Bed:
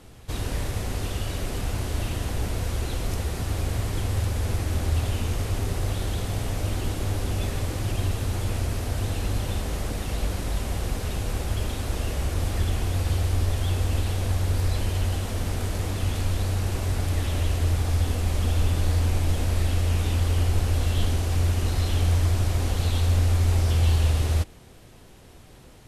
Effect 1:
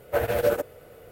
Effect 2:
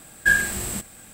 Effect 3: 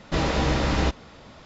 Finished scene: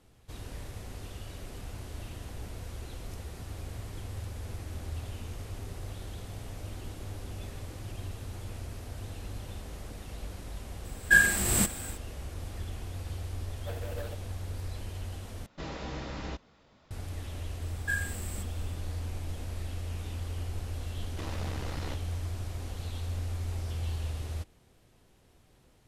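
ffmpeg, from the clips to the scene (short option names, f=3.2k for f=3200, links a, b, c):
-filter_complex "[2:a]asplit=2[a][b];[3:a]asplit=2[c][d];[0:a]volume=-13.5dB[e];[a]dynaudnorm=f=150:g=3:m=13.5dB[f];[1:a]aeval=exprs='0.15*(abs(mod(val(0)/0.15+3,4)-2)-1)':c=same[g];[d]aeval=exprs='max(val(0),0)':c=same[h];[e]asplit=2[i][j];[i]atrim=end=15.464[k];[c]atrim=end=1.45,asetpts=PTS-STARTPTS,volume=-15.5dB[l];[j]atrim=start=16.906[m];[f]atrim=end=1.13,asetpts=PTS-STARTPTS,volume=-7.5dB,afade=t=in:d=0.004:c=hsin,afade=t=out:st=1.126:d=0.004:c=hsin,adelay=10850[n];[g]atrim=end=1.11,asetpts=PTS-STARTPTS,volume=-17.5dB,afade=t=in:d=0.004:c=hsin,afade=t=out:st=1.106:d=0.004:c=hsin,adelay=13530[o];[b]atrim=end=1.13,asetpts=PTS-STARTPTS,volume=-14dB,afade=t=in:d=0.004:c=hsin,afade=t=out:st=1.126:d=0.004:c=hsin,adelay=17620[p];[h]atrim=end=1.45,asetpts=PTS-STARTPTS,volume=-13dB,afade=t=in:d=0.004:c=hsin,afade=t=out:st=1.446:d=0.004:c=hsin,adelay=21050[q];[k][l]acrossfade=d=0.004:c1=hsin:c2=hsin[r];[r][m]acrossfade=d=0.004:c1=hsin:c2=hsin[s];[s][n][o][p][q]amix=inputs=5:normalize=0"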